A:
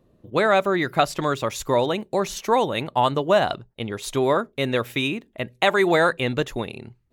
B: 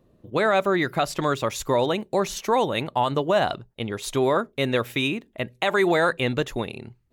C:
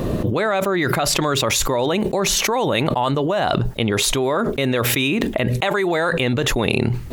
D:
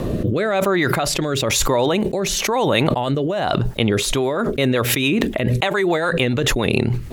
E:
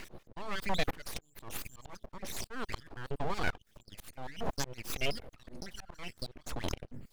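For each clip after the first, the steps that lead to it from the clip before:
peak limiter -11.5 dBFS, peak gain reduction 6 dB
level flattener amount 100%; trim -2 dB
rotary cabinet horn 1 Hz, later 7 Hz, at 3.79 s; trim +2.5 dB
random holes in the spectrogram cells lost 55%; slow attack 551 ms; full-wave rectifier; trim -5.5 dB

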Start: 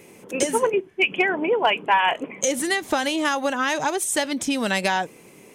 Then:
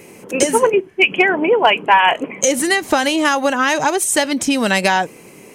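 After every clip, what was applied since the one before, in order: band-stop 3.5 kHz, Q 12; trim +7 dB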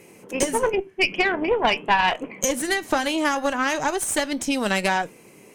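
flange 0.45 Hz, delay 5.8 ms, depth 4.1 ms, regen -81%; valve stage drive 10 dB, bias 0.8; trim +1.5 dB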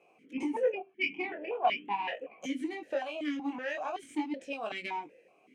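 chorus 0.43 Hz, delay 18 ms, depth 6.5 ms; stepped vowel filter 5.3 Hz; trim +1.5 dB

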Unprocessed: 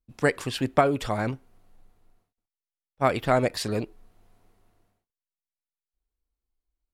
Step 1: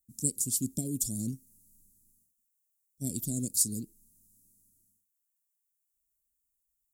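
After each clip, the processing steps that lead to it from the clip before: Chebyshev band-stop 240–7200 Hz, order 3; tilt EQ +3.5 dB/octave; in parallel at -2.5 dB: gain riding 0.5 s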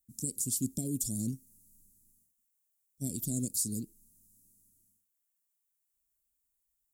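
peak limiter -19.5 dBFS, peak gain reduction 8.5 dB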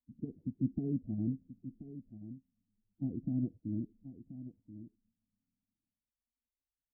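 coarse spectral quantiser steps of 30 dB; rippled Chebyshev low-pass 950 Hz, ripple 6 dB; delay 1031 ms -13 dB; trim +3 dB

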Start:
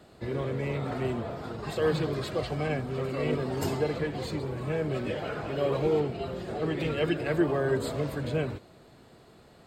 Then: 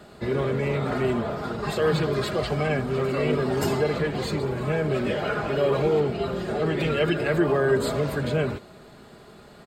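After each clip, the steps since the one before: peaking EQ 1.4 kHz +3.5 dB 0.53 oct; in parallel at +0.5 dB: peak limiter -23.5 dBFS, peak gain reduction 10 dB; on the sum: comb 4.9 ms, depth 34%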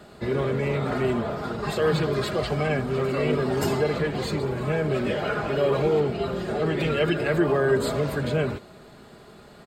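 no audible change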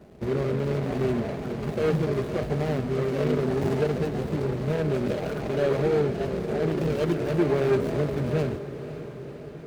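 median filter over 41 samples; on a send: echo that smears into a reverb 537 ms, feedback 66%, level -13 dB

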